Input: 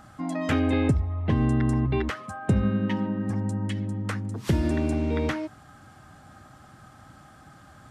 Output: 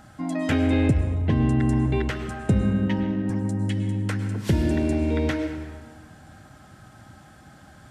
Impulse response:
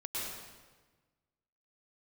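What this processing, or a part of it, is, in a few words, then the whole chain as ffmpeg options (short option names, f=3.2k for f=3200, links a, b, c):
saturated reverb return: -filter_complex "[0:a]asplit=2[a][b];[1:a]atrim=start_sample=2205[c];[b][c]afir=irnorm=-1:irlink=0,asoftclip=type=tanh:threshold=-17dB,volume=-7dB[d];[a][d]amix=inputs=2:normalize=0,equalizer=f=870:t=o:w=0.77:g=-2,bandreject=f=1.2k:w=6.2"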